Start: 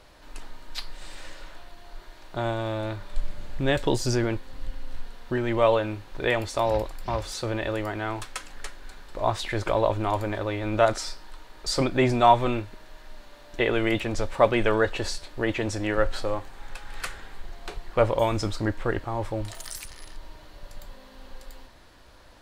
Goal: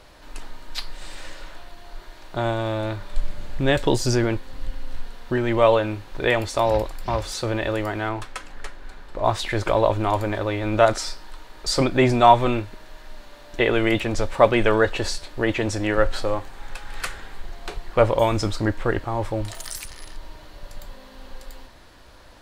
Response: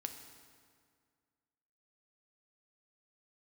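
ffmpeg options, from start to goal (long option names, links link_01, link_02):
-filter_complex "[0:a]asettb=1/sr,asplit=3[link_01][link_02][link_03];[link_01]atrim=end=8.094[link_04];[link_02]atrim=start=8.09:end=9.25,asetpts=PTS-STARTPTS,afade=type=in:duration=0.004:curve=qsin,afade=type=out:start_time=1.156:duration=0.004:curve=qsin,highshelf=frequency=3400:gain=-9[link_05];[link_03]atrim=start=9.246[link_06];[link_04][link_05]acrossfade=duration=0.004:curve1=hsin:curve2=qsin[link_07];[link_07][link_06]acrossfade=duration=0.004:curve1=qsin:curve2=hsin,volume=4dB"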